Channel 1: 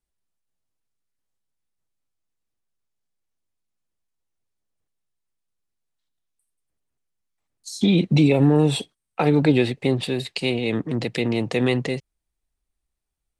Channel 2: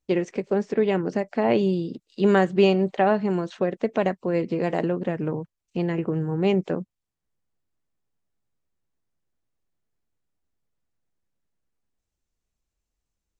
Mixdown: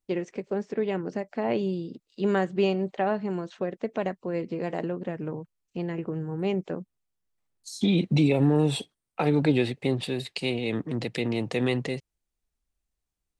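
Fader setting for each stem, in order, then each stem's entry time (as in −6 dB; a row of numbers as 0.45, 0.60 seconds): −5.0, −6.0 decibels; 0.00, 0.00 seconds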